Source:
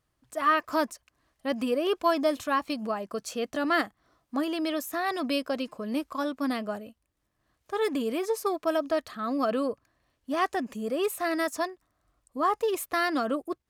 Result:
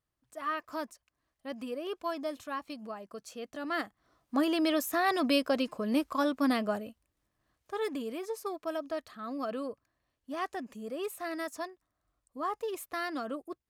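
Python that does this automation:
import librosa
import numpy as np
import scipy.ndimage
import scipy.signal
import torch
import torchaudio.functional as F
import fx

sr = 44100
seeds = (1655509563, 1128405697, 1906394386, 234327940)

y = fx.gain(x, sr, db=fx.line((3.57, -10.5), (4.45, 1.5), (6.82, 1.5), (8.16, -8.5)))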